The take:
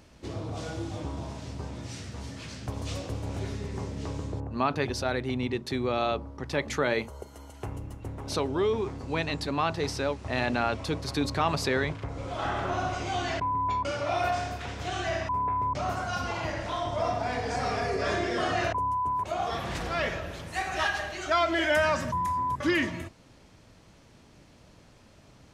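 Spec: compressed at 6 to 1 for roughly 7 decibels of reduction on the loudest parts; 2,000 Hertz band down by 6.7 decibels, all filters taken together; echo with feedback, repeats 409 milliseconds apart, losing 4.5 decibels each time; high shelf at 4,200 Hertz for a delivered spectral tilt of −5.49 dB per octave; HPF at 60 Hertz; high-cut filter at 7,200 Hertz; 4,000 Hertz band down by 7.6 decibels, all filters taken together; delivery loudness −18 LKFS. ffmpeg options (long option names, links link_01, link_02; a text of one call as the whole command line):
ffmpeg -i in.wav -af "highpass=60,lowpass=7200,equalizer=frequency=2000:width_type=o:gain=-7,equalizer=frequency=4000:width_type=o:gain=-4,highshelf=frequency=4200:gain=-5.5,acompressor=threshold=-30dB:ratio=6,aecho=1:1:409|818|1227|1636|2045|2454|2863|3272|3681:0.596|0.357|0.214|0.129|0.0772|0.0463|0.0278|0.0167|0.01,volume=16dB" out.wav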